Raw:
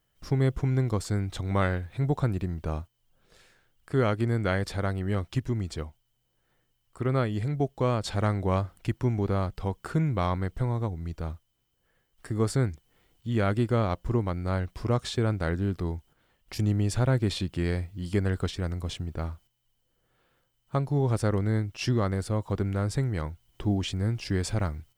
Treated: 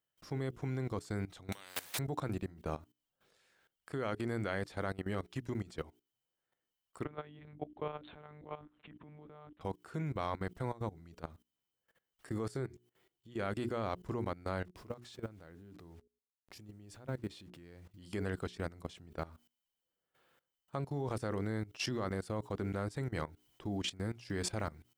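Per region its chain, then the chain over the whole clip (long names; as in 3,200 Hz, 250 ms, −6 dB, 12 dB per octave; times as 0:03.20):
0:01.52–0:01.99: spectral tilt +2.5 dB per octave + compressor whose output falls as the input rises −36 dBFS, ratio −0.5 + every bin compressed towards the loudest bin 4 to 1
0:07.05–0:09.61: output level in coarse steps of 16 dB + one-pitch LPC vocoder at 8 kHz 150 Hz
0:12.48–0:13.39: parametric band 360 Hz +8.5 dB 0.3 octaves + tuned comb filter 130 Hz, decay 0.21 s, harmonics odd, mix 50%
0:14.65–0:17.91: hold until the input has moved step −48.5 dBFS + low-shelf EQ 490 Hz +4.5 dB + downward compressor 1.5 to 1, threshold −48 dBFS
whole clip: high-pass filter 240 Hz 6 dB per octave; mains-hum notches 60/120/180/240/300/360/420 Hz; output level in coarse steps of 18 dB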